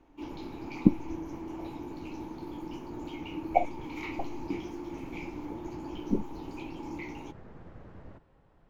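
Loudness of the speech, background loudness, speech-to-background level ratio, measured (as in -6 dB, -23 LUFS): -31.5 LUFS, -41.0 LUFS, 9.5 dB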